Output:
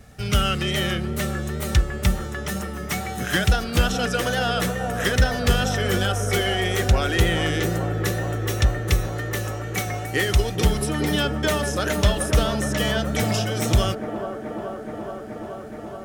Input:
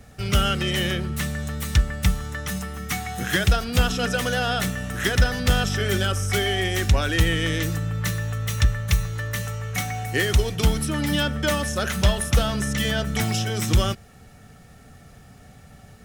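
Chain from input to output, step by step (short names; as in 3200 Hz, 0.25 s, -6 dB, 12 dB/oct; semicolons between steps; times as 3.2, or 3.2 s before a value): wow and flutter 54 cents; band-limited delay 0.426 s, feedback 83%, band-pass 530 Hz, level -4.5 dB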